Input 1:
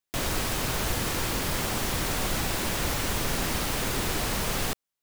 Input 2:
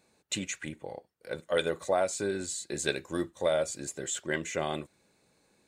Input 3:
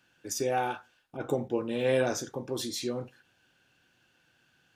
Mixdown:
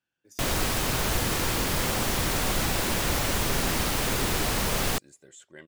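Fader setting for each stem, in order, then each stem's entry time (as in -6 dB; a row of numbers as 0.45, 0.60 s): +2.0, -16.0, -19.0 dB; 0.25, 1.25, 0.00 s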